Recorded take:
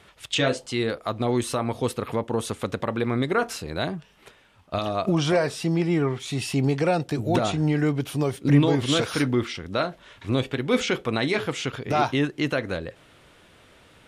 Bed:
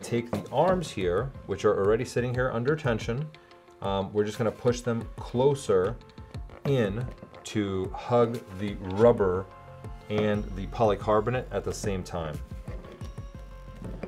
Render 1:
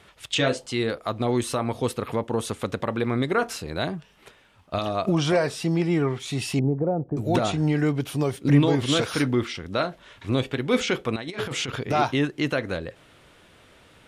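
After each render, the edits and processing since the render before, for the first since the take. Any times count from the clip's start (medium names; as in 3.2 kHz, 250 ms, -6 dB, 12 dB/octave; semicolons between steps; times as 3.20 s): 6.59–7.17 s: Bessel low-pass 580 Hz, order 4; 11.16–11.84 s: compressor with a negative ratio -29 dBFS, ratio -0.5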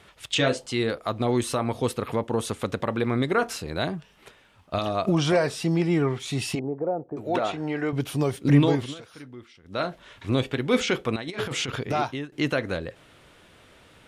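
6.55–7.93 s: tone controls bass -15 dB, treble -12 dB; 8.70–9.88 s: dip -20 dB, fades 0.25 s; 11.79–12.32 s: fade out, to -18.5 dB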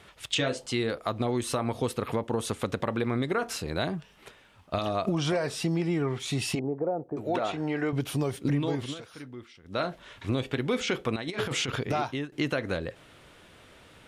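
compression 6:1, threshold -24 dBFS, peak gain reduction 11.5 dB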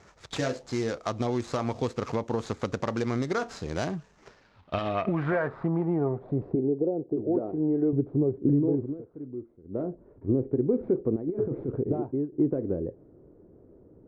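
median filter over 15 samples; low-pass sweep 6.5 kHz -> 380 Hz, 4.14–6.62 s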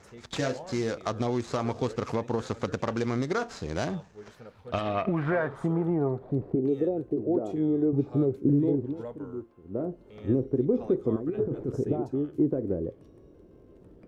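add bed -20.5 dB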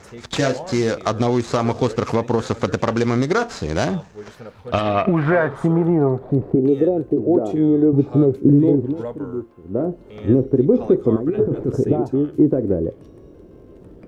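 trim +10 dB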